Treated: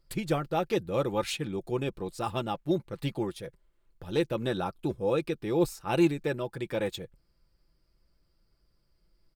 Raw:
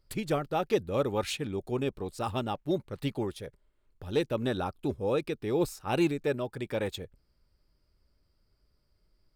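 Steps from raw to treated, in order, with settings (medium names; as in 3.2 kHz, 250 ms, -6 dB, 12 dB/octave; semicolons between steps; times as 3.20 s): comb 5.9 ms, depth 45%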